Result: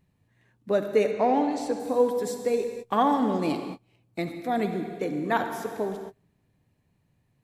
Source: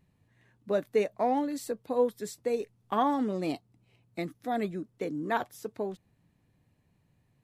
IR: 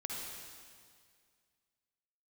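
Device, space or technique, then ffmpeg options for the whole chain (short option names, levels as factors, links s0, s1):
keyed gated reverb: -filter_complex "[0:a]asplit=3[s0][s1][s2];[1:a]atrim=start_sample=2205[s3];[s1][s3]afir=irnorm=-1:irlink=0[s4];[s2]apad=whole_len=328074[s5];[s4][s5]sidechaingate=range=0.0224:threshold=0.00158:ratio=16:detection=peak,volume=0.891[s6];[s0][s6]amix=inputs=2:normalize=0,asettb=1/sr,asplit=3[s7][s8][s9];[s7]atrim=end=1.114[s10];[s8]atrim=start=1.11:end=1.8,asetpts=PTS-STARTPTS,afade=t=in:d=0.004:c=qsin,afade=t=out:st=0.686:d=0.004:c=qsin,lowpass=6500[s11];[s9]atrim=start=1.796[s12];[s10][s11]acrossfade=d=0.004:c1=hsin:c2=qsin[s13];[s13][s12]acrossfade=d=0.004:c1=qsin:c2=hsin"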